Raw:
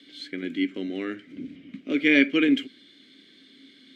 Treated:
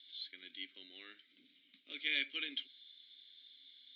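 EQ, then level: band-pass 3700 Hz, Q 7; air absorption 220 m; +5.5 dB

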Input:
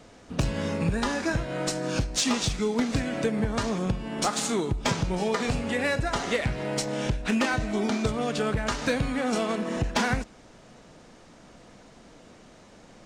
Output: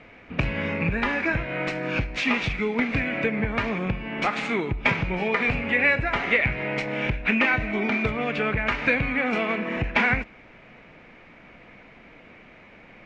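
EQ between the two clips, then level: synth low-pass 2300 Hz, resonance Q 5.5; 0.0 dB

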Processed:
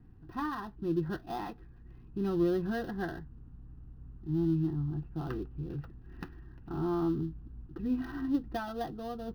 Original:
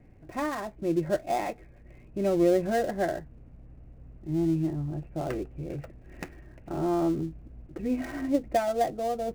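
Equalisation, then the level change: high shelf 3300 Hz -8 dB; fixed phaser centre 2200 Hz, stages 6; 0.0 dB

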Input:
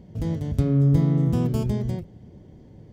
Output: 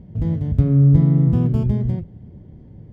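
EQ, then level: tone controls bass +8 dB, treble -14 dB; -1.0 dB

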